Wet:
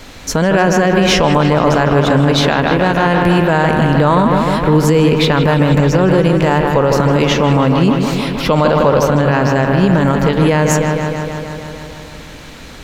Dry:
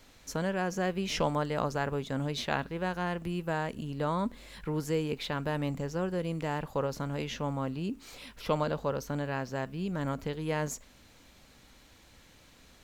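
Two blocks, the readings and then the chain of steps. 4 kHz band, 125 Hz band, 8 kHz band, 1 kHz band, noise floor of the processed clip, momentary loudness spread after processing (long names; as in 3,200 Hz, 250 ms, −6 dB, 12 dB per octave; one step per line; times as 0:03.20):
+20.5 dB, +22.0 dB, +19.0 dB, +20.5 dB, −33 dBFS, 6 LU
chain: high-shelf EQ 6,900 Hz −6.5 dB
on a send: delay with a low-pass on its return 155 ms, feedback 74%, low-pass 3,400 Hz, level −7 dB
on the sum: boost into a limiter +24 dB
level −1 dB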